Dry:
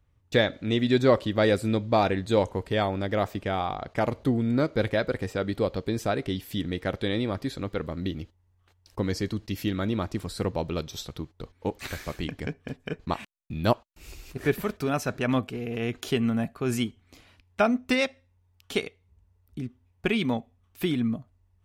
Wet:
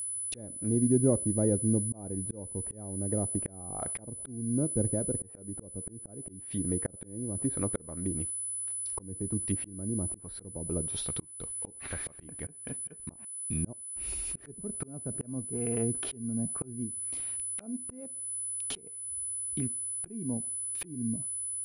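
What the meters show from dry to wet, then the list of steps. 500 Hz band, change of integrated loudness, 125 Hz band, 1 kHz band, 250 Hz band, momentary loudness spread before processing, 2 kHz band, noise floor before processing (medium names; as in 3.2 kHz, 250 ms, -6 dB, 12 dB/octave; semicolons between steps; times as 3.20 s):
-10.5 dB, -5.0 dB, -4.0 dB, -19.0 dB, -5.5 dB, 13 LU, -20.0 dB, -66 dBFS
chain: low-pass that closes with the level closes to 330 Hz, closed at -24 dBFS; whistle 10 kHz -33 dBFS; slow attack 439 ms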